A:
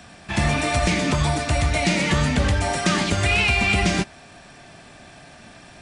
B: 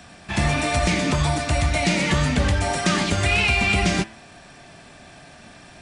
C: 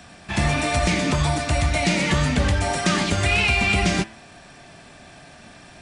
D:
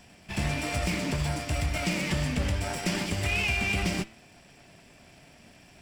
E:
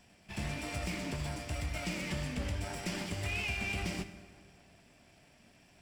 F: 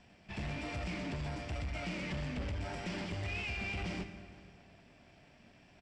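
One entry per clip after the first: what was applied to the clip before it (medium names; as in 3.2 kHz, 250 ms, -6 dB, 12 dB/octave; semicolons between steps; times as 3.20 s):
de-hum 110.5 Hz, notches 31
no audible change
comb filter that takes the minimum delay 0.39 ms; trim -7.5 dB
plate-style reverb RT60 2.1 s, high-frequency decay 0.65×, DRR 11 dB; trim -8.5 dB
saturation -35 dBFS, distortion -12 dB; distance through air 120 m; delay 463 ms -23.5 dB; trim +2 dB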